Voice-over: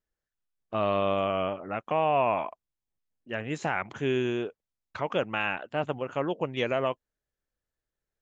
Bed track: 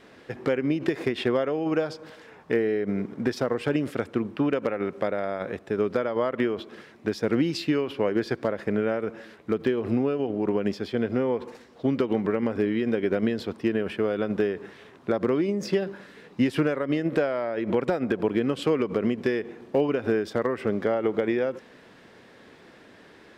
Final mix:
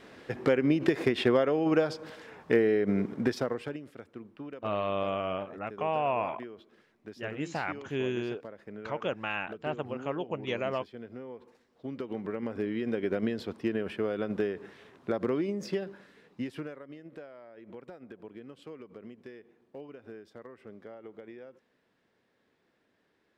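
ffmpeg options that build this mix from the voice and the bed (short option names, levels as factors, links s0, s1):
-filter_complex "[0:a]adelay=3900,volume=0.596[s0];[1:a]volume=4.22,afade=t=out:st=3.11:d=0.69:silence=0.125893,afade=t=in:st=11.66:d=1.38:silence=0.237137,afade=t=out:st=15.36:d=1.58:silence=0.149624[s1];[s0][s1]amix=inputs=2:normalize=0"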